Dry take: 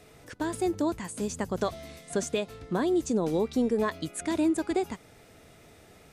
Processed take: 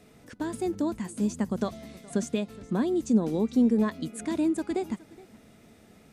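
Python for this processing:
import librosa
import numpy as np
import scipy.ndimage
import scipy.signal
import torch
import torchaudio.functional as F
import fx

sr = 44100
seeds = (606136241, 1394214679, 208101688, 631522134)

p1 = fx.peak_eq(x, sr, hz=220.0, db=12.0, octaves=0.66)
p2 = p1 + fx.echo_single(p1, sr, ms=419, db=-21.5, dry=0)
y = p2 * librosa.db_to_amplitude(-4.0)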